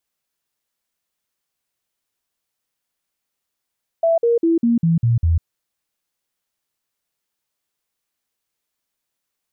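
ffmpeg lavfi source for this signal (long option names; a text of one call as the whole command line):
ffmpeg -f lavfi -i "aevalsrc='0.237*clip(min(mod(t,0.2),0.15-mod(t,0.2))/0.005,0,1)*sin(2*PI*663*pow(2,-floor(t/0.2)/2)*mod(t,0.2))':duration=1.4:sample_rate=44100" out.wav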